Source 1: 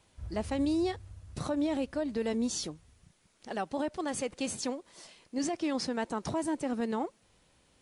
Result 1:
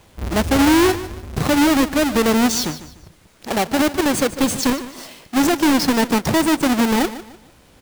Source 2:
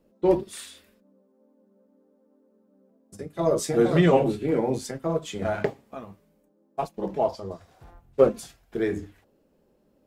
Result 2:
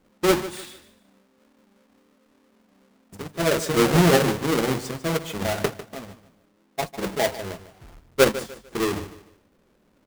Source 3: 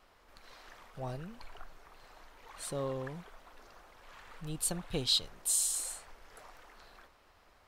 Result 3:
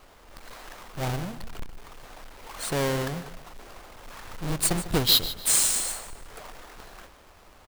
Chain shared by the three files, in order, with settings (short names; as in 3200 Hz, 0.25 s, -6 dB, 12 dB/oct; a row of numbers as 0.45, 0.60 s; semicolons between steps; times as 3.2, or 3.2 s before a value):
half-waves squared off; feedback echo 0.149 s, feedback 31%, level -14.5 dB; normalise peaks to -9 dBFS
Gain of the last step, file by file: +11.0, -2.5, +6.0 dB